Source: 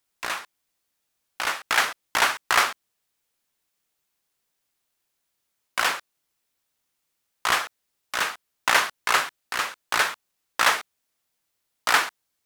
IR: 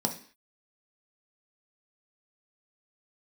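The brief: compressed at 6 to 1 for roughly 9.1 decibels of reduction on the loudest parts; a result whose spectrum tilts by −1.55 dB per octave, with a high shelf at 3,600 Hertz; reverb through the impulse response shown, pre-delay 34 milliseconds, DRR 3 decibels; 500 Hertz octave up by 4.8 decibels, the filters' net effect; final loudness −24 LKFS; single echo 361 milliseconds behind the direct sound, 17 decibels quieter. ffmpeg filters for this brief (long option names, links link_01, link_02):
-filter_complex "[0:a]equalizer=frequency=500:width_type=o:gain=6.5,highshelf=frequency=3600:gain=-8,acompressor=threshold=-25dB:ratio=6,aecho=1:1:361:0.141,asplit=2[link_01][link_02];[1:a]atrim=start_sample=2205,adelay=34[link_03];[link_02][link_03]afir=irnorm=-1:irlink=0,volume=-9.5dB[link_04];[link_01][link_04]amix=inputs=2:normalize=0,volume=6.5dB"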